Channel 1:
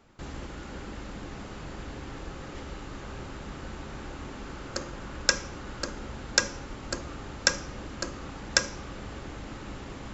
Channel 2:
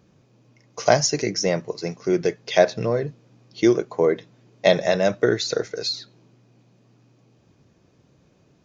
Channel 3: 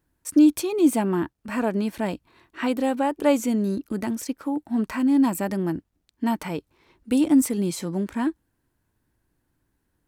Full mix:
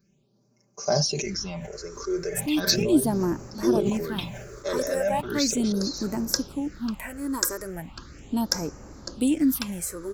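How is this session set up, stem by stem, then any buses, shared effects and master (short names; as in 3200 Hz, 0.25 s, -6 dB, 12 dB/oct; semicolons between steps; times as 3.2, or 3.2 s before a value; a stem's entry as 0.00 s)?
-5.5 dB, 1.05 s, no send, upward compressor, threshold -42 dBFS
-11.5 dB, 0.00 s, no send, notch 1900 Hz, Q 8.8; comb 5.1 ms, depth 96%; sustainer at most 31 dB/s
-2.5 dB, 2.10 s, no send, dry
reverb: off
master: high shelf 5900 Hz +11 dB; phaser stages 6, 0.37 Hz, lowest notch 190–3400 Hz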